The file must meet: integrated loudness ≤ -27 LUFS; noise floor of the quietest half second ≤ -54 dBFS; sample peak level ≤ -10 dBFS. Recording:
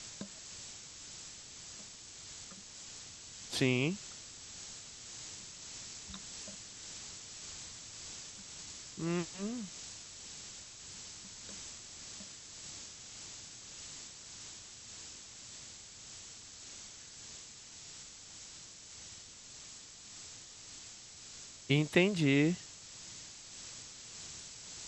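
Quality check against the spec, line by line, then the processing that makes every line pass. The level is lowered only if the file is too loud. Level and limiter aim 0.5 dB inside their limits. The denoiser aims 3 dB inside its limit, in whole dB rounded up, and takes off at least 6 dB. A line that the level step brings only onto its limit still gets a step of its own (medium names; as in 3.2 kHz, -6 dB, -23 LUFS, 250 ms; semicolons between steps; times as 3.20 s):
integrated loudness -40.5 LUFS: pass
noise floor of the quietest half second -52 dBFS: fail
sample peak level -11.0 dBFS: pass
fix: noise reduction 6 dB, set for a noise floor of -52 dBFS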